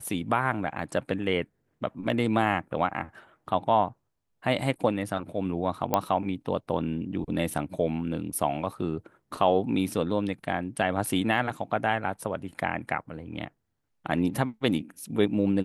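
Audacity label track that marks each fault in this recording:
5.940000	5.940000	pop -9 dBFS

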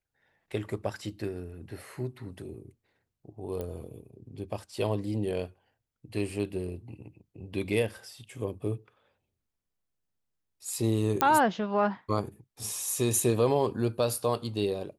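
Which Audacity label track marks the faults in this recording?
3.610000	3.610000	pop -23 dBFS
11.210000	11.210000	pop -8 dBFS

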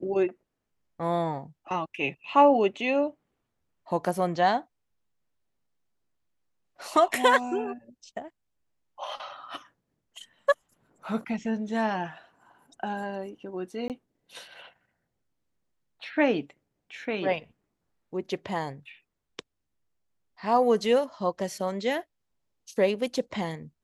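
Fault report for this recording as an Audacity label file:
13.880000	13.900000	gap 18 ms

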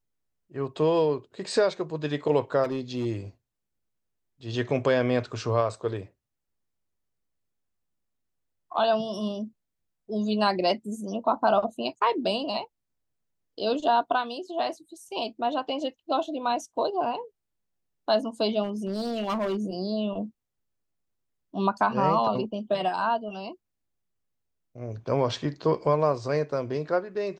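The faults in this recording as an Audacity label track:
2.630000	3.060000	clipped -24 dBFS
18.630000	19.700000	clipped -24 dBFS

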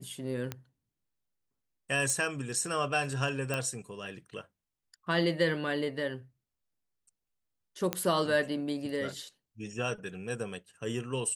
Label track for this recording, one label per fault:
0.520000	0.520000	pop -19 dBFS
2.100000	2.100000	pop
3.540000	3.540000	pop -18 dBFS
7.930000	7.930000	pop -13 dBFS

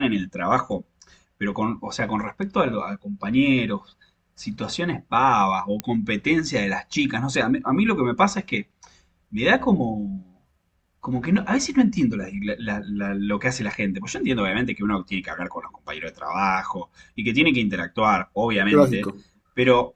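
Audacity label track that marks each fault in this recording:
5.800000	5.800000	pop -10 dBFS

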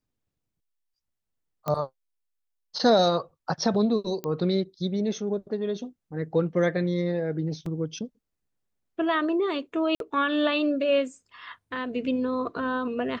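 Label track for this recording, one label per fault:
1.680000	1.680000	pop -16 dBFS
4.240000	4.240000	pop -18 dBFS
7.660000	7.660000	gap 3 ms
9.950000	10.000000	gap 52 ms

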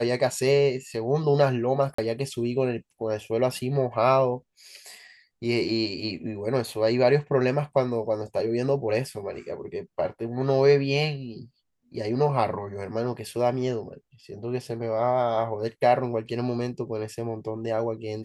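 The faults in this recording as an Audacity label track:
1.940000	1.980000	gap 44 ms

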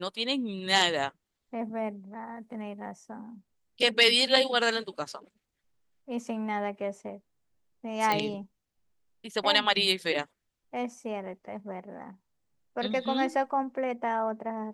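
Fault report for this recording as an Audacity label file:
8.120000	8.120000	pop -12 dBFS

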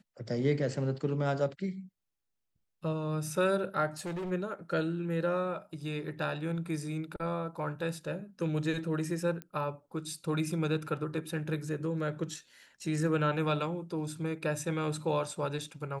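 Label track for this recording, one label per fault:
3.970000	4.320000	clipped -34 dBFS
9.420000	9.420000	pop -25 dBFS

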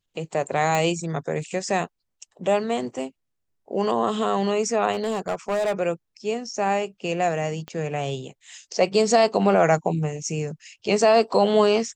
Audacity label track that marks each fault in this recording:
0.750000	0.750000	pop -10 dBFS
4.920000	5.800000	clipped -20 dBFS
7.680000	7.680000	pop -21 dBFS

